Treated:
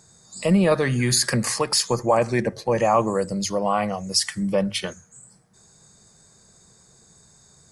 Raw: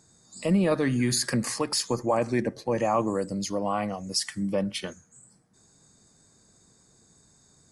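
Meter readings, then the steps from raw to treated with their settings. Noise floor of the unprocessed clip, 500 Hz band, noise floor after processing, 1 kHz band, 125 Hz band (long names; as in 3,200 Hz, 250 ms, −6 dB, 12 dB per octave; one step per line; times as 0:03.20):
−61 dBFS, +5.5 dB, −55 dBFS, +6.5 dB, +5.5 dB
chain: parametric band 280 Hz −11.5 dB 0.42 octaves
mains-hum notches 50/100 Hz
level +6.5 dB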